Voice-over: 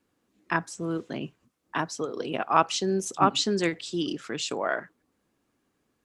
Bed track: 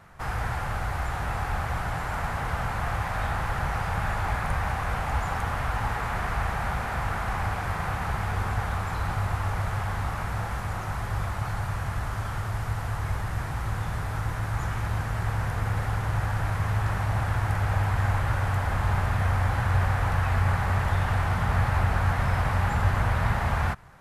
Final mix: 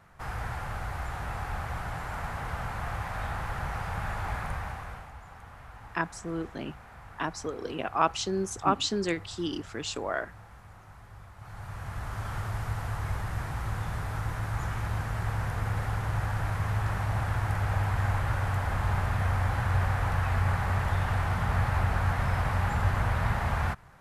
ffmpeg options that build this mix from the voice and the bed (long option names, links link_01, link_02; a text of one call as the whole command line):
ffmpeg -i stem1.wav -i stem2.wav -filter_complex "[0:a]adelay=5450,volume=-3.5dB[link_01];[1:a]volume=11dB,afade=type=out:start_time=4.4:duration=0.73:silence=0.199526,afade=type=in:start_time=11.36:duration=1.01:silence=0.149624[link_02];[link_01][link_02]amix=inputs=2:normalize=0" out.wav